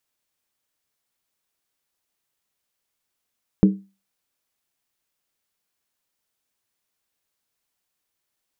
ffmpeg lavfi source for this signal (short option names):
-f lavfi -i "aevalsrc='0.447*pow(10,-3*t/0.3)*sin(2*PI*195*t)+0.2*pow(10,-3*t/0.238)*sin(2*PI*310.8*t)+0.0891*pow(10,-3*t/0.205)*sin(2*PI*416.5*t)+0.0398*pow(10,-3*t/0.198)*sin(2*PI*447.7*t)+0.0178*pow(10,-3*t/0.184)*sin(2*PI*517.3*t)':d=0.63:s=44100"